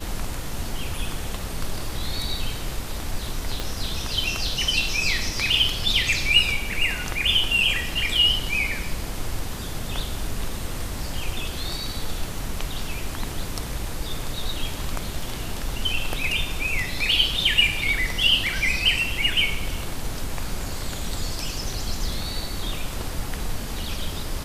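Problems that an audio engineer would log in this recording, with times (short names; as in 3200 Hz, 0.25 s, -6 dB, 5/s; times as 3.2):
3.6 pop -13 dBFS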